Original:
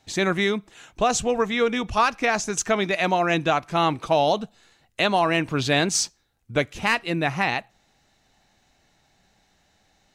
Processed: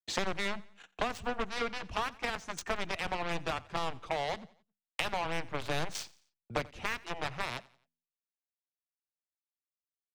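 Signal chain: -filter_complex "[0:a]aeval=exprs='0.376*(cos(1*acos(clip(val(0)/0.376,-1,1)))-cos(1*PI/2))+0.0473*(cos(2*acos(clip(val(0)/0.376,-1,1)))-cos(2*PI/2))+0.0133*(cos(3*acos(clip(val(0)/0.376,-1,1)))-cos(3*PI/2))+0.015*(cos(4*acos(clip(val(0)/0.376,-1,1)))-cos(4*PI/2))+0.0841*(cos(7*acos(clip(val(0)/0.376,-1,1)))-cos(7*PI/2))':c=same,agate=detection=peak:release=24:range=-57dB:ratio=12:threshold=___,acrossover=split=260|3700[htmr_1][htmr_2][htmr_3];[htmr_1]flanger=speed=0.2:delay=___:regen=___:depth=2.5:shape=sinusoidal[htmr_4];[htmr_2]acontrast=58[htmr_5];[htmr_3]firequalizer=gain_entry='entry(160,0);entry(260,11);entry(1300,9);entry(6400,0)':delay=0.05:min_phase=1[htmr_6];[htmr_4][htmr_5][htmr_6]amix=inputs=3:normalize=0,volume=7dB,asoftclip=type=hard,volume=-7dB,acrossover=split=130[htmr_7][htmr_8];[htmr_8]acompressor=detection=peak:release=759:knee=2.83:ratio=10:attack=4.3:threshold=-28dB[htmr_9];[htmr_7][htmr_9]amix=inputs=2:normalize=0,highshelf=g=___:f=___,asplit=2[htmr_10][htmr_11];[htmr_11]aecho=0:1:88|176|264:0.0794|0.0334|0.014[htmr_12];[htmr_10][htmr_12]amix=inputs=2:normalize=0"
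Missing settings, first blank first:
-52dB, 9.6, 86, -6.5, 9500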